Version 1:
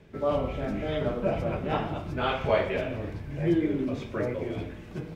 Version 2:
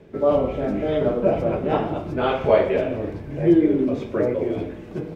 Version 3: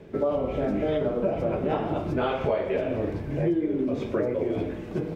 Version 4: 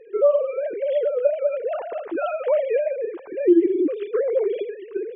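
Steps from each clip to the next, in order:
parametric band 410 Hz +10 dB 2.3 octaves
downward compressor 6 to 1, threshold −24 dBFS, peak gain reduction 13 dB; level +1.5 dB
three sine waves on the formant tracks; level +4.5 dB

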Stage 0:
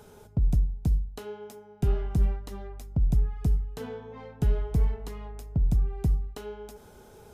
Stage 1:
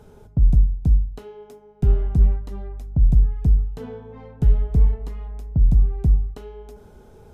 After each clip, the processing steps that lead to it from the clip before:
spectral tilt −2 dB per octave
hum removal 103.9 Hz, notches 17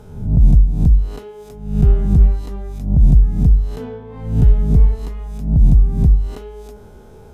peak hold with a rise ahead of every peak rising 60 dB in 0.60 s
level +4 dB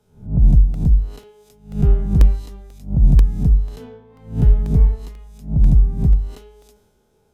regular buffer underruns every 0.49 s, samples 64, repeat, from 0:00.74
multiband upward and downward expander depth 70%
level −2.5 dB

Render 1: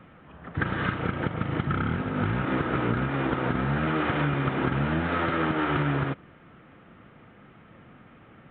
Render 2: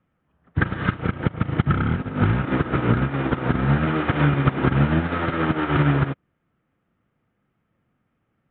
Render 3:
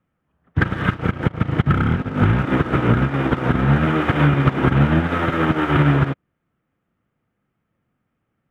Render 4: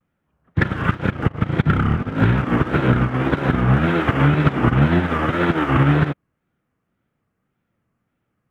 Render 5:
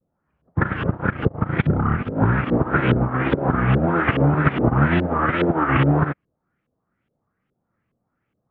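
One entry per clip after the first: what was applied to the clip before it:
low-shelf EQ 180 Hz +6 dB; expander for the loud parts 2.5 to 1, over −40 dBFS; level +7.5 dB
leveller curve on the samples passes 1
tape wow and flutter 150 cents
auto-filter low-pass saw up 2.4 Hz 450–3,300 Hz; level −2.5 dB

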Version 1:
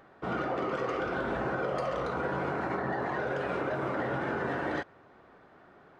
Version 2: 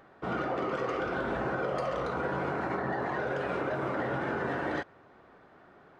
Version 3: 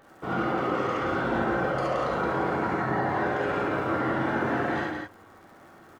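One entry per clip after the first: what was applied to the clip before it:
no processing that can be heard
surface crackle 86 per second −49 dBFS; on a send: loudspeakers that aren't time-aligned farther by 22 metres −12 dB, 59 metres −5 dB; on the sum: reverb whose tail is shaped and stops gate 90 ms rising, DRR −1.5 dB

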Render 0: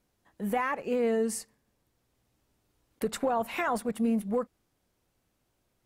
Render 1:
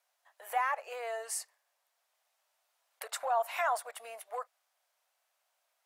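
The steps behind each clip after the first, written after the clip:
elliptic high-pass filter 630 Hz, stop band 70 dB
dynamic equaliser 2,500 Hz, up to −4 dB, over −46 dBFS, Q 0.99
level +1 dB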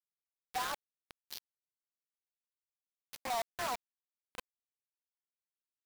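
hearing-aid frequency compression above 1,200 Hz 1.5 to 1
bit reduction 5 bits
level −7 dB

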